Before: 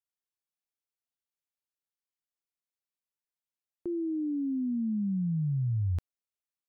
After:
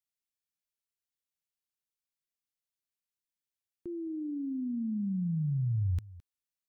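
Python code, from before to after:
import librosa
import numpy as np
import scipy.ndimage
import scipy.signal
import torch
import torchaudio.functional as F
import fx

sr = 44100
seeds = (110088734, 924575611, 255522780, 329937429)

y = fx.peak_eq(x, sr, hz=680.0, db=-13.0, octaves=1.8)
y = y + 10.0 ** (-19.5 / 20.0) * np.pad(y, (int(214 * sr / 1000.0), 0))[:len(y)]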